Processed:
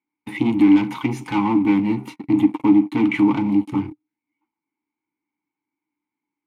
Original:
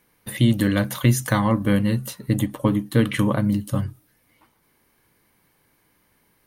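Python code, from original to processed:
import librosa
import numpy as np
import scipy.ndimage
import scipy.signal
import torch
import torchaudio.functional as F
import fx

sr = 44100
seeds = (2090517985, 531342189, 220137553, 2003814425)

y = fx.peak_eq(x, sr, hz=1500.0, db=12.0, octaves=0.42)
y = fx.leveller(y, sr, passes=5)
y = fx.vowel_filter(y, sr, vowel='u')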